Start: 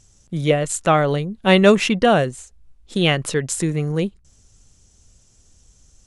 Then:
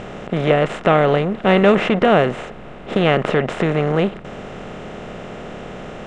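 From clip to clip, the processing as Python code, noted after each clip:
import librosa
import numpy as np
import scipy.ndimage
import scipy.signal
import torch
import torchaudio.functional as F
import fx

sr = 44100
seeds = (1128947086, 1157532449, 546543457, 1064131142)

y = fx.bin_compress(x, sr, power=0.4)
y = scipy.signal.sosfilt(scipy.signal.butter(2, 2300.0, 'lowpass', fs=sr, output='sos'), y)
y = y * librosa.db_to_amplitude(-2.5)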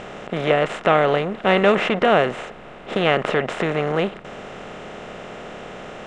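y = fx.low_shelf(x, sr, hz=320.0, db=-9.0)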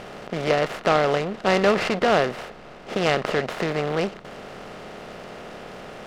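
y = fx.noise_mod_delay(x, sr, seeds[0], noise_hz=1800.0, depth_ms=0.035)
y = y * librosa.db_to_amplitude(-3.0)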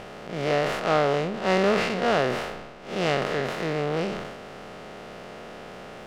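y = fx.spec_blur(x, sr, span_ms=97.0)
y = fx.sustainer(y, sr, db_per_s=43.0)
y = y * librosa.db_to_amplitude(-1.0)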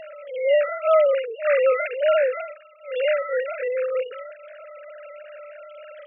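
y = fx.sine_speech(x, sr)
y = fx.dereverb_blind(y, sr, rt60_s=0.72)
y = y * librosa.db_to_amplitude(4.5)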